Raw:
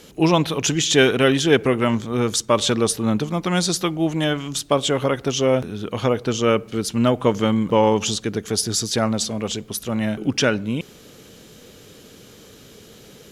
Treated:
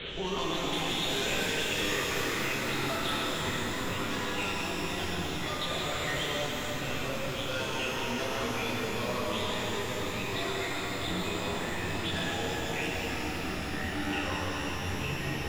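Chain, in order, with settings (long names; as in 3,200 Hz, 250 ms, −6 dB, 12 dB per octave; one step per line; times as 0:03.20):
pitch shifter swept by a sawtooth +3 semitones, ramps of 330 ms
parametric band 110 Hz +9 dB 0.4 octaves
linear-prediction vocoder at 8 kHz pitch kept
tilt shelving filter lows −8 dB, about 1,400 Hz
echo with a time of its own for lows and highs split 390 Hz, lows 280 ms, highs 111 ms, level −10 dB
tempo change 0.86×
in parallel at −9.5 dB: sine wavefolder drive 14 dB, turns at −2 dBFS
on the sum: delay with pitch and tempo change per echo 300 ms, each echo −5 semitones, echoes 2
downward compressor 10 to 1, threshold −32 dBFS, peak gain reduction 24.5 dB
reverb with rising layers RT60 3.9 s, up +12 semitones, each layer −8 dB, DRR −4.5 dB
level −2 dB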